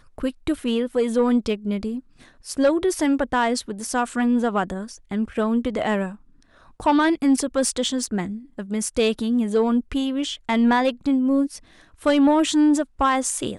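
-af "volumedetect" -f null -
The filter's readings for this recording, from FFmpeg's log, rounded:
mean_volume: -22.0 dB
max_volume: -10.2 dB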